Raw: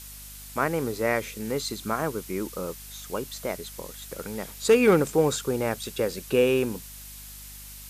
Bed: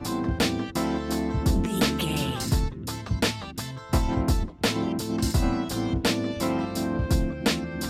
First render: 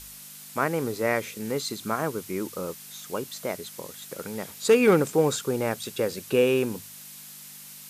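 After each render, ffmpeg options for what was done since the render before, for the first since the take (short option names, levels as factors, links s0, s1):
-af "bandreject=f=50:t=h:w=4,bandreject=f=100:t=h:w=4"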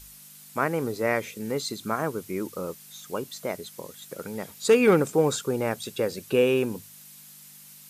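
-af "afftdn=nr=6:nf=-45"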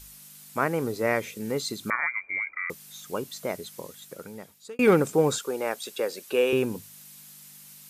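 -filter_complex "[0:a]asettb=1/sr,asplit=3[s0][s1][s2];[s0]atrim=end=1.904[s3];[s1]atrim=start=1.9:end=2.7,asetpts=PTS-STARTPTS,afade=t=in:d=0.004:c=qsin,afade=t=out:st=0.796:d=0.004:c=qsin,lowpass=f=2100:t=q:w=0.5098,lowpass=f=2100:t=q:w=0.6013,lowpass=f=2100:t=q:w=0.9,lowpass=f=2100:t=q:w=2.563,afreqshift=-2500[s4];[s2]atrim=start=2.696[s5];[s3][s4]acrossfade=d=0.004:c1=hsin:c2=qsin[s6];[s6][s5]acrossfade=d=0.004:c1=qsin:c2=hsin,asettb=1/sr,asplit=3[s7][s8][s9];[s7]atrim=end=5.384[s10];[s8]atrim=start=5.38:end=6.53,asetpts=PTS-STARTPTS,afade=t=in:d=0.004:c=qsin,afade=t=out:st=1.146:d=0.004:c=qsin,highpass=390[s11];[s9]atrim=start=6.526[s12];[s10][s11]acrossfade=d=0.004:c1=hsin:c2=qsin[s13];[s13][s12]acrossfade=d=0.004:c1=qsin:c2=hsin,asplit=2[s14][s15];[s14]atrim=end=4.79,asetpts=PTS-STARTPTS,afade=t=out:st=3.81:d=0.98[s16];[s15]atrim=start=4.79,asetpts=PTS-STARTPTS,afade=t=in:d=0.004:c=hsin[s17];[s16][s17]concat=n=2:v=0:a=1"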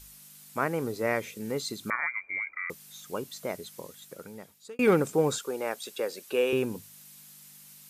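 -af "volume=0.708"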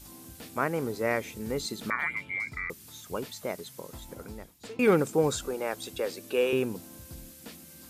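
-filter_complex "[1:a]volume=0.0708[s0];[0:a][s0]amix=inputs=2:normalize=0"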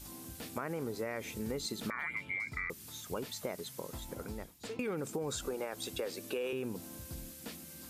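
-af "alimiter=limit=0.075:level=0:latency=1:release=36,acompressor=threshold=0.02:ratio=5"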